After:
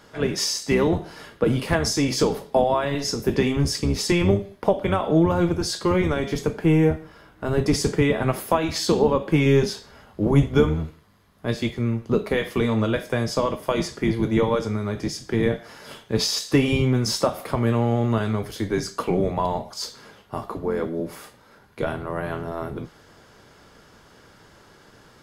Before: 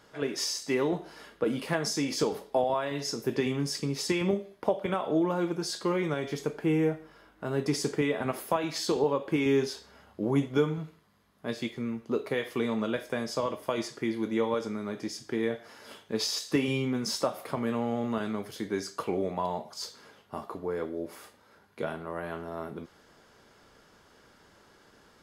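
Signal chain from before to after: octaver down 1 oct, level -1 dB; gain +7 dB

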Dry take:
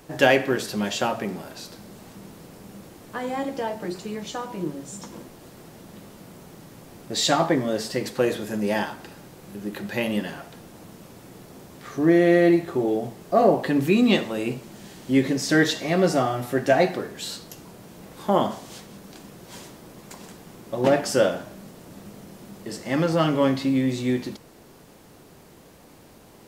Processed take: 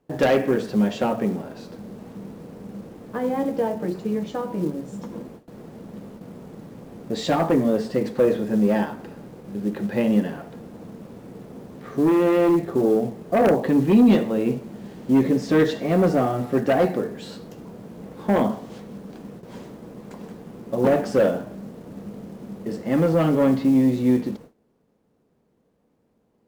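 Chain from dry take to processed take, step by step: LPF 1200 Hz 6 dB/oct; companded quantiser 6-bit; added harmonics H 5 -9 dB, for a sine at -6 dBFS; gate with hold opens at -28 dBFS; small resonant body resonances 220/460 Hz, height 7 dB, ringing for 30 ms; gain -7 dB

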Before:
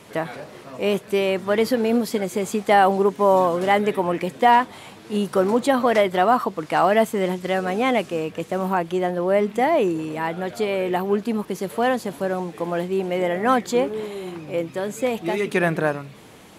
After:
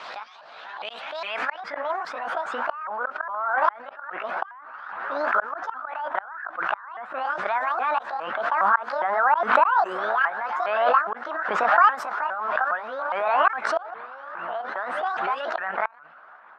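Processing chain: repeated pitch sweeps +9.5 st, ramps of 0.41 s; flipped gate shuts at -11 dBFS, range -32 dB; band-pass sweep 4600 Hz -> 1500 Hz, 0.33–1.98; harmonic-percussive split percussive +6 dB; low-pass opened by the level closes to 2200 Hz, open at -24 dBFS; band shelf 980 Hz +12 dB; backwards sustainer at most 35 dB/s; gain -6 dB

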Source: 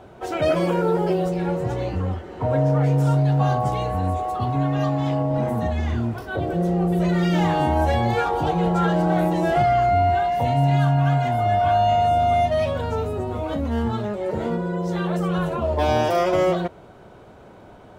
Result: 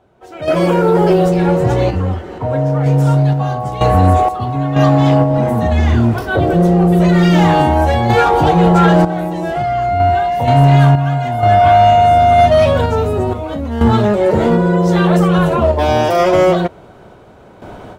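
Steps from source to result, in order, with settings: random-step tremolo 2.1 Hz, depth 80%; AGC gain up to 15 dB; soft clip -4.5 dBFS, distortion -21 dB; gain +3 dB

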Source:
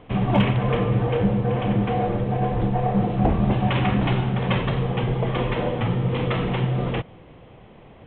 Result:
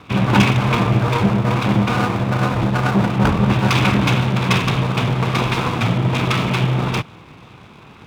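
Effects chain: minimum comb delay 0.82 ms; HPF 79 Hz; high shelf 2100 Hz +7.5 dB; gain +6 dB

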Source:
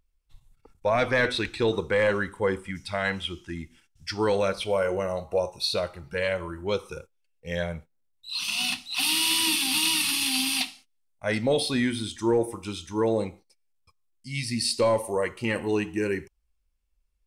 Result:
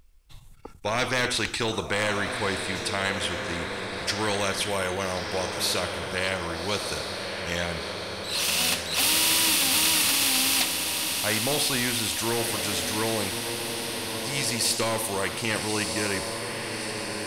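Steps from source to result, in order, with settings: on a send: diffused feedback echo 1.259 s, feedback 52%, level -12 dB; on the sum: spectral compressor 2:1; gain +3.5 dB

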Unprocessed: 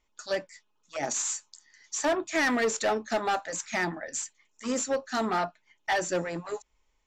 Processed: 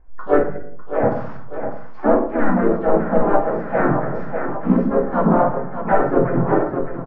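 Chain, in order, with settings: on a send: thinning echo 0.602 s, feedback 48%, high-pass 210 Hz, level -10.5 dB; on the sum: shoebox room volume 870 m³, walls furnished, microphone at 3.1 m; vocal rider within 5 dB 0.5 s; low shelf 94 Hz +11 dB; harmoniser -5 st -1 dB, -3 st -5 dB, +4 st -9 dB; LPF 1400 Hz 24 dB/oct; gain +4 dB

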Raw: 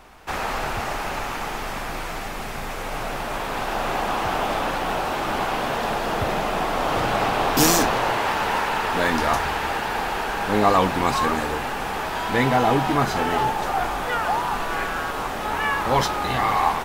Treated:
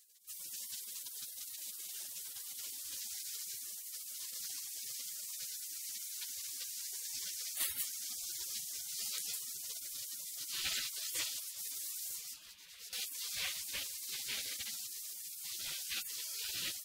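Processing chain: spectral gate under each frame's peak -30 dB weak; 2.97–4.34 reverse; 11.43–12.93 negative-ratio compressor -48 dBFS, ratio -0.5; gain +2 dB

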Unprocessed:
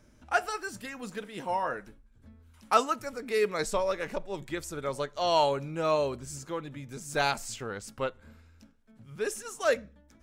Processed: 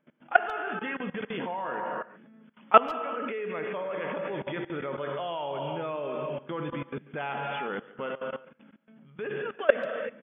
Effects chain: non-linear reverb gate 0.38 s flat, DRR 5.5 dB; FFT band-pass 130–3500 Hz; level quantiser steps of 21 dB; speakerphone echo 0.14 s, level -20 dB; gain +9 dB

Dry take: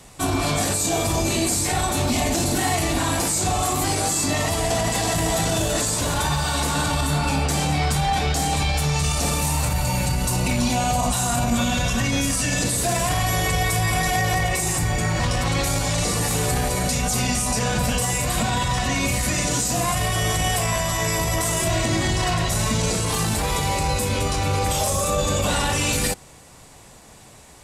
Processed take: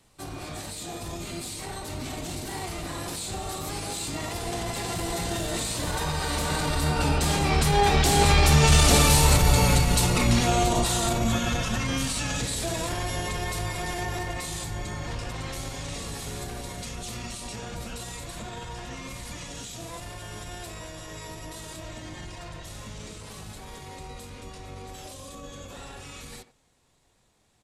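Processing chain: Doppler pass-by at 8.95, 13 m/s, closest 12 m; speakerphone echo 90 ms, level -13 dB; harmoniser -12 st -3 dB; gain +3 dB

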